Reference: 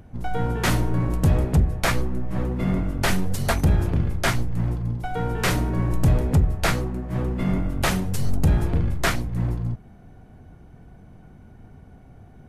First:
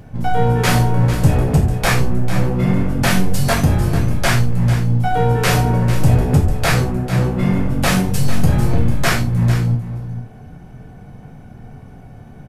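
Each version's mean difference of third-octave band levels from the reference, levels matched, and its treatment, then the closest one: 3.0 dB: in parallel at +2.5 dB: limiter -18.5 dBFS, peak gain reduction 8 dB; on the sum: echo 0.447 s -11.5 dB; non-linear reverb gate 0.12 s falling, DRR -2 dB; gain -2 dB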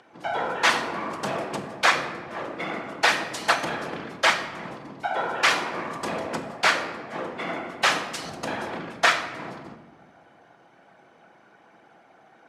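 8.0 dB: whisperiser; BPF 730–5500 Hz; shoebox room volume 860 m³, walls mixed, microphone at 0.72 m; gain +5.5 dB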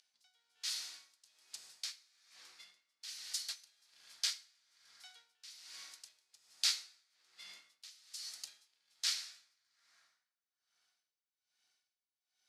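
19.0 dB: ladder band-pass 5300 Hz, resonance 50%; plate-style reverb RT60 3.6 s, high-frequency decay 0.45×, DRR 6.5 dB; dB-linear tremolo 1.2 Hz, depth 24 dB; gain +8.5 dB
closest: first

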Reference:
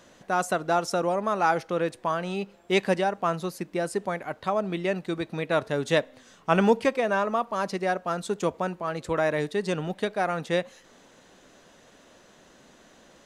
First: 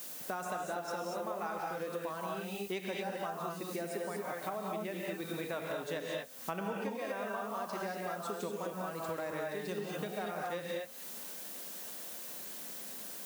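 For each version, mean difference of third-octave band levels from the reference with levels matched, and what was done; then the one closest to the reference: 11.5 dB: HPF 140 Hz; non-linear reverb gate 0.26 s rising, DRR -2 dB; added noise blue -42 dBFS; compressor 6:1, threshold -33 dBFS, peak gain reduction 18.5 dB; gain -3 dB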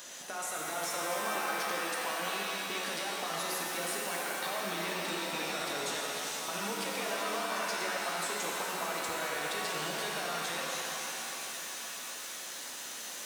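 16.0 dB: tilt +4.5 dB/oct; limiter -26.5 dBFS, peak gain reduction 21 dB; compressor 3:1, threshold -41 dBFS, peak gain reduction 7.5 dB; shimmer reverb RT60 3.8 s, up +7 st, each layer -2 dB, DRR -2.5 dB; gain +2 dB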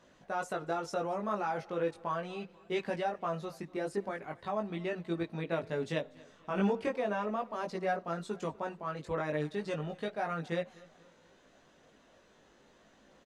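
3.0 dB: high shelf 6900 Hz -11.5 dB; limiter -16 dBFS, peak gain reduction 8.5 dB; chorus voices 2, 0.38 Hz, delay 19 ms, depth 1.2 ms; on a send: feedback echo 0.241 s, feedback 47%, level -23 dB; on the sum: gain -4.5 dB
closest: third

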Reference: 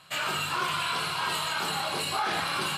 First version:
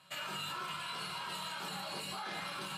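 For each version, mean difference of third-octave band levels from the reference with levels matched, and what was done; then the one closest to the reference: 1.5 dB: limiter -24 dBFS, peak gain reduction 6.5 dB; HPF 120 Hz 12 dB/oct; low shelf 170 Hz +5 dB; resonator 190 Hz, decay 0.39 s, harmonics odd, mix 80%; gain +3.5 dB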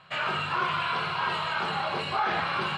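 6.0 dB: LPF 2600 Hz 12 dB/oct; bell 290 Hz -8 dB 0.25 oct; gain +2.5 dB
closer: first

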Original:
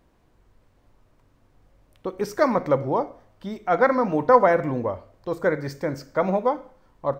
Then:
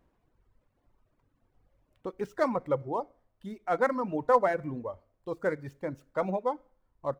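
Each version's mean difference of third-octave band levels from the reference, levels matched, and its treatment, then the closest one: 4.0 dB: median filter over 9 samples; reverb removal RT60 2 s; gain -7 dB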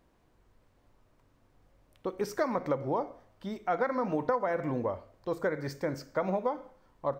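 2.5 dB: low shelf 160 Hz -3 dB; compressor 12:1, threshold -21 dBFS, peak gain reduction 12.5 dB; gain -4 dB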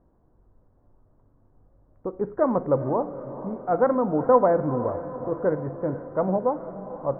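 6.0 dB: Bessel low-pass 840 Hz, order 8; on a send: diffused feedback echo 0.462 s, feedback 57%, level -13 dB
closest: second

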